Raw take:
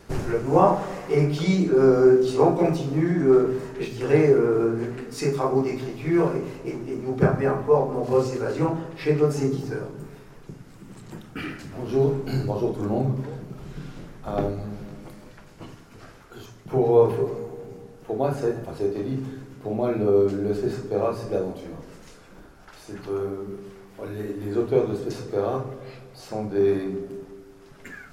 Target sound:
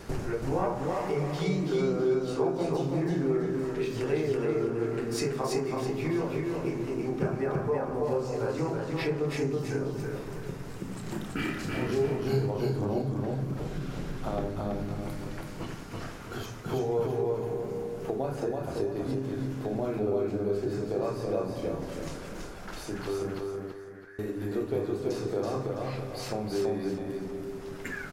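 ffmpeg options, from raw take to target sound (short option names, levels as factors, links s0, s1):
-filter_complex "[0:a]acompressor=threshold=0.0141:ratio=3,asettb=1/sr,asplit=3[s0][s1][s2];[s0]atrim=end=11.034[s3];[s1]atrim=start=11.03:end=12.47,asetpts=PTS-STARTPTS,afade=t=in:d=0.004:c=qsin,afade=t=out:st=1.436:d=0.004:c=qsin,asplit=2[s4][s5];[s5]adelay=32,volume=0.708[s6];[s4][s6]amix=inputs=2:normalize=0,atrim=end_sample=63504[s7];[s2]atrim=start=12.466[s8];[s3][s7]acrossfade=d=0.004:c1=hsin:c2=qsin[s9];[s9][s8]acrossfade=d=0.004:c1=qsin:c2=hsin,asettb=1/sr,asplit=3[s10][s11][s12];[s10]atrim=end=23.394[s13];[s11]atrim=start=23.39:end=24.19,asetpts=PTS-STARTPTS,afade=t=in:d=0.004:c=qsin,afade=t=out:st=0.796:d=0.004:c=qsin,asuperpass=centerf=1700:order=4:qfactor=4.1[s14];[s12]atrim=start=24.186[s15];[s13][s14]acrossfade=d=0.004:c1=hsin:c2=qsin[s16];[s16][s15]acrossfade=d=0.004:c1=qsin:c2=hsin,aecho=1:1:329|658|987|1316:0.708|0.241|0.0818|0.0278,volume=1.68"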